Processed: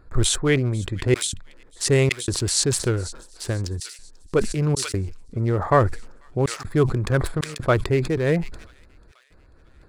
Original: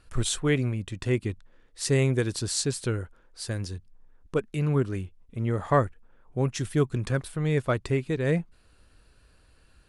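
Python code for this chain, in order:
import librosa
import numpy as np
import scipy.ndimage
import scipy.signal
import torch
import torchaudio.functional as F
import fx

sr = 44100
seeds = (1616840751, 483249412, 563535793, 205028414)

p1 = fx.wiener(x, sr, points=15)
p2 = fx.peak_eq(p1, sr, hz=350.0, db=4.0, octaves=0.54)
p3 = fx.step_gate(p2, sr, bpm=79, pattern='xxxxxx.xxxx.xx', floor_db=-60.0, edge_ms=4.5)
p4 = fx.rider(p3, sr, range_db=5, speed_s=0.5)
p5 = p3 + F.gain(torch.from_numpy(p4), 0.0).numpy()
p6 = fx.dynamic_eq(p5, sr, hz=230.0, q=0.82, threshold_db=-31.0, ratio=4.0, max_db=-6)
p7 = p6 + fx.echo_wet_highpass(p6, sr, ms=490, feedback_pct=59, hz=2900.0, wet_db=-20.5, dry=0)
p8 = fx.sustainer(p7, sr, db_per_s=80.0)
y = F.gain(torch.from_numpy(p8), 1.5).numpy()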